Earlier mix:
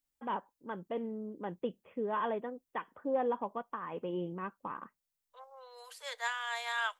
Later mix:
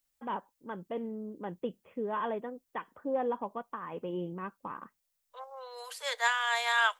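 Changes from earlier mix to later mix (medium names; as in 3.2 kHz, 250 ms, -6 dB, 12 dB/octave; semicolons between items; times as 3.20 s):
second voice +7.5 dB; master: add bass shelf 150 Hz +3.5 dB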